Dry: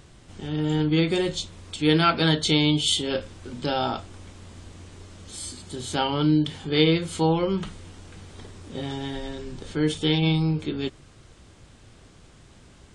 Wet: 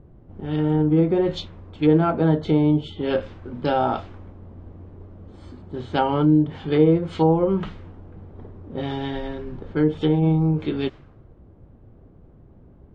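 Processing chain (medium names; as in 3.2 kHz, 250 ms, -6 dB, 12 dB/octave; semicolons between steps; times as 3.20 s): low-pass that closes with the level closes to 790 Hz, closed at -18.5 dBFS; dynamic bell 680 Hz, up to +3 dB, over -37 dBFS, Q 0.77; level-controlled noise filter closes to 500 Hz, open at -21 dBFS; trim +3 dB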